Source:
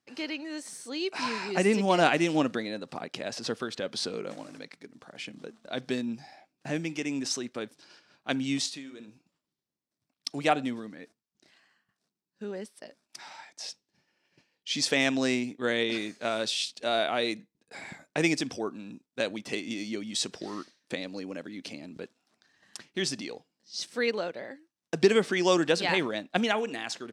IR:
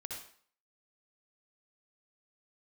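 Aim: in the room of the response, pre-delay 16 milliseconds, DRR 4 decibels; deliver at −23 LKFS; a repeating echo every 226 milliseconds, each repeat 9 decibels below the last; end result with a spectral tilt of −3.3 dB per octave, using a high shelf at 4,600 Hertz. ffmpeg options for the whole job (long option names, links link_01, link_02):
-filter_complex "[0:a]highshelf=frequency=4600:gain=-9,aecho=1:1:226|452|678|904:0.355|0.124|0.0435|0.0152,asplit=2[link_01][link_02];[1:a]atrim=start_sample=2205,adelay=16[link_03];[link_02][link_03]afir=irnorm=-1:irlink=0,volume=-2.5dB[link_04];[link_01][link_04]amix=inputs=2:normalize=0,volume=6dB"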